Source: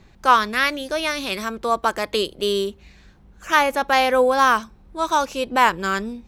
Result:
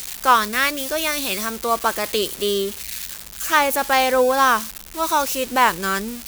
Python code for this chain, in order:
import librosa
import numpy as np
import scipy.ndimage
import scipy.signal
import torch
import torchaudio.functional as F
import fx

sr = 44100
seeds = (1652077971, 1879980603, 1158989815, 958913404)

y = x + 0.5 * 10.0 ** (-18.0 / 20.0) * np.diff(np.sign(x), prepend=np.sign(x[:1]))